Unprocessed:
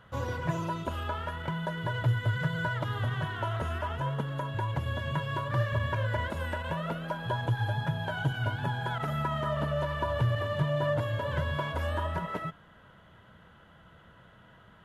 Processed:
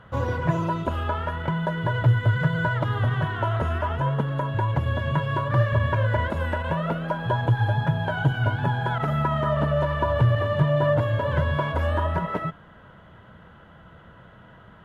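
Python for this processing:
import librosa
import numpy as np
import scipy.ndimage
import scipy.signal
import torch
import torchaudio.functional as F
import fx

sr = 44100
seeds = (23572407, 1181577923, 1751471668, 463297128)

y = fx.high_shelf(x, sr, hz=3200.0, db=-11.5)
y = y * 10.0 ** (8.0 / 20.0)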